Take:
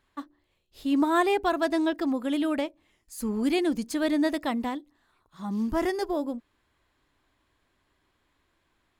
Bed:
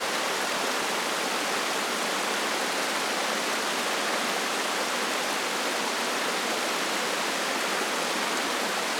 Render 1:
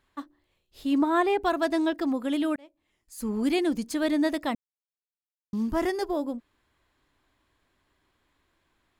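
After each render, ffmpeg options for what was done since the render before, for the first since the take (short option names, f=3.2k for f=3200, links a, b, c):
-filter_complex "[0:a]asettb=1/sr,asplit=3[a][b][c];[a]atrim=end=0.984[d];[b]atrim=start=0.98:end=1.41,asetpts=PTS-STARTPTS,afade=t=in:d=0.004:c=qsin,afade=t=out:st=0.426:d=0.004:c=qsin,highshelf=f=4.1k:g=-9.5[e];[c]atrim=start=1.406[f];[d][e]acrossfade=d=0.004:c1=hsin:c2=qsin[g];[g][f]acrossfade=d=0.004:c1=qsin:c2=hsin,asplit=4[h][i][j][k];[h]atrim=end=2.56,asetpts=PTS-STARTPTS,afade=t=out:st=2.556:d=0.004:c=hsin[l];[i]atrim=start=2.56:end=4.55,asetpts=PTS-STARTPTS,afade=t=in:d=0.78,afade=t=out:st=1.986:d=0.004:c=hsin[m];[j]atrim=start=4.55:end=5.53,asetpts=PTS-STARTPTS,volume=0[n];[k]atrim=start=5.53,asetpts=PTS-STARTPTS,afade=t=in:d=0.004:c=hsin[o];[l][m][n][o]concat=n=4:v=0:a=1"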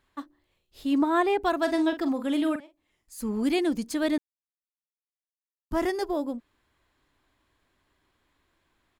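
-filter_complex "[0:a]asplit=3[a][b][c];[a]afade=t=out:st=1.65:d=0.02[d];[b]asplit=2[e][f];[f]adelay=44,volume=-10dB[g];[e][g]amix=inputs=2:normalize=0,afade=t=in:st=1.65:d=0.02,afade=t=out:st=3.2:d=0.02[h];[c]afade=t=in:st=3.2:d=0.02[i];[d][h][i]amix=inputs=3:normalize=0,asplit=3[j][k][l];[j]atrim=end=4.18,asetpts=PTS-STARTPTS,afade=t=out:st=4.176:d=0.004:c=hsin[m];[k]atrim=start=4.18:end=5.71,asetpts=PTS-STARTPTS,volume=0[n];[l]atrim=start=5.71,asetpts=PTS-STARTPTS,afade=t=in:d=0.004:c=hsin[o];[m][n][o]concat=n=3:v=0:a=1"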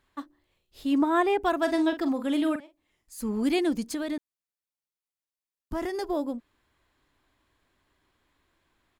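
-filter_complex "[0:a]asettb=1/sr,asplit=3[a][b][c];[a]atrim=end=0.924[d];[b]atrim=start=0.92:end=1.69,asetpts=PTS-STARTPTS,afade=t=in:d=0.004:c=qsin,afade=t=out:st=0.766:d=0.004:c=qsin,bandreject=f=4.2k:w=7.3[e];[c]atrim=start=1.686[f];[d][e]acrossfade=d=0.004:c1=hsin:c2=qsin[g];[g][f]acrossfade=d=0.004:c1=qsin:c2=hsin,asettb=1/sr,asplit=3[h][i][j];[h]atrim=end=3.944[k];[i]atrim=start=3.94:end=6.04,asetpts=PTS-STARTPTS,afade=t=in:d=0.004:c=qsin,afade=t=out:st=2.096:d=0.004:c=qsin,acompressor=threshold=-26dB:ratio=10:attack=3.2:release=140:knee=1:detection=peak[l];[j]atrim=start=6.036[m];[k][l]acrossfade=d=0.004:c1=hsin:c2=qsin[n];[n][m]acrossfade=d=0.004:c1=qsin:c2=hsin"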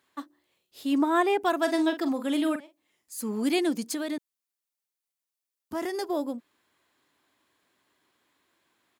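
-af "highpass=190,highshelf=f=4.7k:g=6"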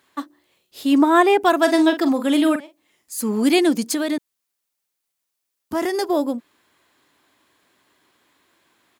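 -af "volume=9dB"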